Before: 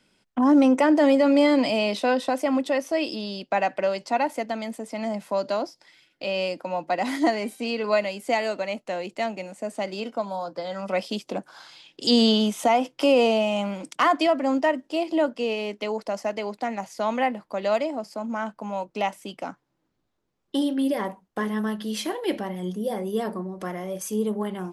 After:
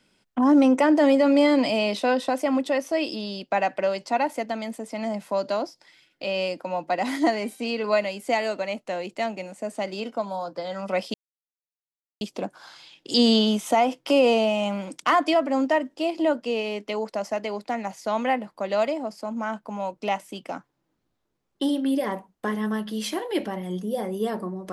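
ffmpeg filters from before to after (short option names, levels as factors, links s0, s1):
-filter_complex "[0:a]asplit=2[s0][s1];[s0]atrim=end=11.14,asetpts=PTS-STARTPTS,afade=t=out:st=11.136:d=0.004:c=hsin,apad=pad_dur=1.07[s2];[s1]atrim=start=11.14,asetpts=PTS-STARTPTS,afade=t=in:d=0.004:c=hsin[s3];[s2][s3]concat=n=2:v=0:a=1"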